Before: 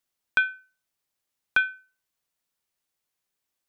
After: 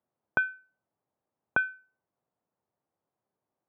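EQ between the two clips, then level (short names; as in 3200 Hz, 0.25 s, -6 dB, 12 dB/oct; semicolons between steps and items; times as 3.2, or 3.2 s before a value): Chebyshev band-pass 110–790 Hz, order 2; +8.5 dB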